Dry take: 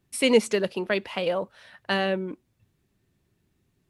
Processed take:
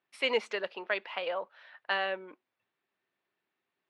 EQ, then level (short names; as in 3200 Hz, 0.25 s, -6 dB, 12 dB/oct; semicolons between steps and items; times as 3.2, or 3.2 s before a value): HPF 790 Hz 12 dB/oct; dynamic EQ 8000 Hz, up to +7 dB, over -50 dBFS, Q 1.5; air absorption 310 m; 0.0 dB